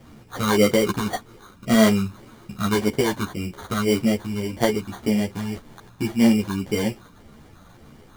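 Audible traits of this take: phasing stages 6, 1.8 Hz, lowest notch 500–2500 Hz; aliases and images of a low sample rate 2600 Hz, jitter 0%; a shimmering, thickened sound

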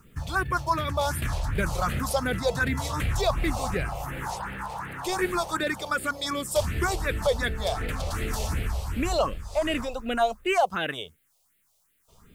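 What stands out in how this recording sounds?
a quantiser's noise floor 12-bit, dither triangular; phasing stages 4, 2.7 Hz, lowest notch 260–1000 Hz

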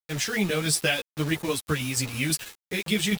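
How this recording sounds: tremolo saw down 6.1 Hz, depth 50%; a quantiser's noise floor 6-bit, dither none; a shimmering, thickened sound

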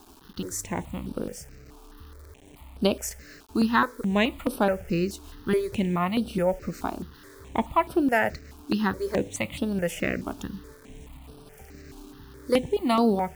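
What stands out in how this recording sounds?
a quantiser's noise floor 8-bit, dither none; notches that jump at a steady rate 4.7 Hz 520–6900 Hz

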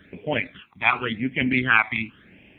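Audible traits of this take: phasing stages 12, 0.91 Hz, lowest notch 490–1300 Hz

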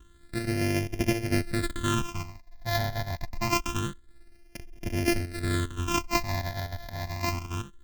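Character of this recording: a buzz of ramps at a fixed pitch in blocks of 128 samples; phasing stages 8, 0.26 Hz, lowest notch 360–1200 Hz

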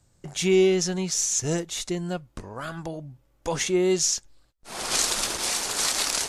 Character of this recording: noise floor -64 dBFS; spectral tilt -2.5 dB/oct

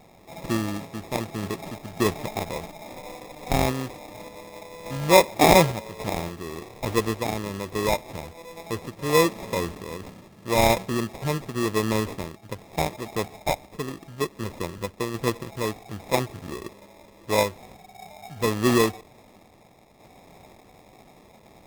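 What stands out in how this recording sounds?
aliases and images of a low sample rate 1500 Hz, jitter 0%; random-step tremolo; AAC

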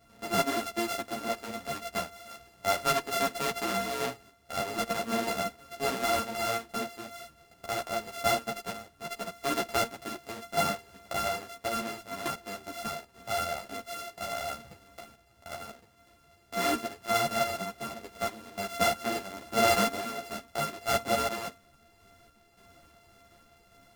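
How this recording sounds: a buzz of ramps at a fixed pitch in blocks of 64 samples; random-step tremolo; a shimmering, thickened sound

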